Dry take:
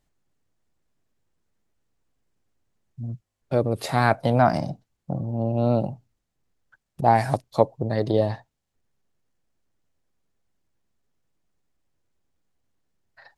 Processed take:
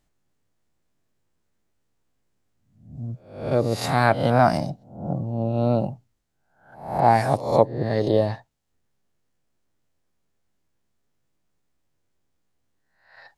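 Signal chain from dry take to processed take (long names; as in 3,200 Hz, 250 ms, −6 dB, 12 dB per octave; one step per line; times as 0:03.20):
peak hold with a rise ahead of every peak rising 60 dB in 0.57 s
0:04.29–0:04.71: high-shelf EQ 10,000 Hz +10 dB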